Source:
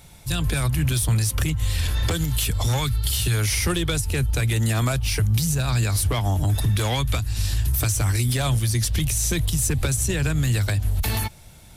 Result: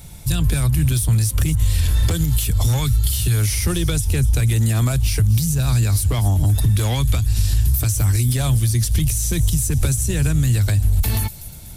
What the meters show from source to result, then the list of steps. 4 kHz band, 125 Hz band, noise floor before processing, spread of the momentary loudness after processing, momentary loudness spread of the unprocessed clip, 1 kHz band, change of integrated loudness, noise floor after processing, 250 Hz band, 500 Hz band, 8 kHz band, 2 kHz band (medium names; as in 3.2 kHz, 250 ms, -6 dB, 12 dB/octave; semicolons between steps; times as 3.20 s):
-1.0 dB, +5.0 dB, -46 dBFS, 2 LU, 3 LU, -2.0 dB, +4.0 dB, -35 dBFS, +3.5 dB, -0.5 dB, +2.0 dB, -2.5 dB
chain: treble shelf 5.6 kHz +9 dB; compression 3:1, threshold -24 dBFS, peak gain reduction 7.5 dB; bass shelf 310 Hz +10 dB; feedback echo behind a high-pass 244 ms, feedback 51%, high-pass 5.5 kHz, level -10.5 dB; trim +1 dB